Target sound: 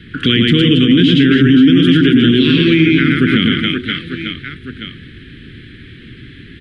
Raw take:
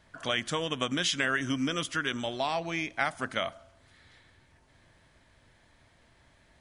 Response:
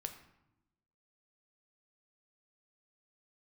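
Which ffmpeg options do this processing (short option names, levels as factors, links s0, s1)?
-filter_complex "[0:a]asuperstop=centerf=770:order=8:qfactor=0.75,equalizer=f=220:w=0.39:g=12,asplit=2[s0][s1];[s1]aecho=0:1:110|275|522.5|893.8|1451:0.631|0.398|0.251|0.158|0.1[s2];[s0][s2]amix=inputs=2:normalize=0,acrossover=split=470[s3][s4];[s4]acompressor=threshold=0.0178:ratio=6[s5];[s3][s5]amix=inputs=2:normalize=0,highshelf=f=4500:t=q:w=3:g=-12,alimiter=level_in=9.44:limit=0.891:release=50:level=0:latency=1,volume=0.891"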